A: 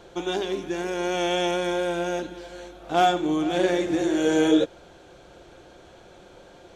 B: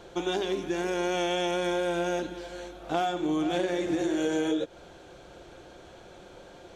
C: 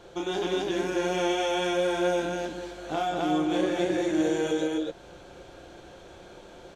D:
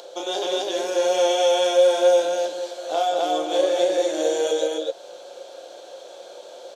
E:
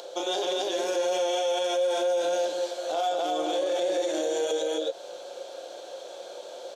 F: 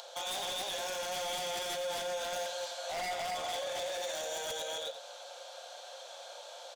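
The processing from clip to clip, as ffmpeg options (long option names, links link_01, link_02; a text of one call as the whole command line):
ffmpeg -i in.wav -af "acompressor=threshold=-24dB:ratio=12" out.wav
ffmpeg -i in.wav -af "aecho=1:1:32.07|195.3|262.4:0.631|0.355|1,volume=-2.5dB" out.wav
ffmpeg -i in.wav -af "acompressor=mode=upward:threshold=-46dB:ratio=2.5,highpass=frequency=550:width_type=q:width=4.3,highshelf=frequency=2900:width_type=q:width=1.5:gain=8" out.wav
ffmpeg -i in.wav -af "alimiter=limit=-19.5dB:level=0:latency=1:release=53" out.wav
ffmpeg -i in.wav -af "highpass=frequency=720:width=0.5412,highpass=frequency=720:width=1.3066,aeval=exprs='0.0299*(abs(mod(val(0)/0.0299+3,4)-2)-1)':channel_layout=same,aecho=1:1:86:0.282,volume=-1.5dB" out.wav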